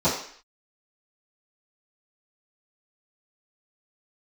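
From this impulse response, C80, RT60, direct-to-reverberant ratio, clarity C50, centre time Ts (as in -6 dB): 9.0 dB, 0.55 s, -16.0 dB, 5.0 dB, 36 ms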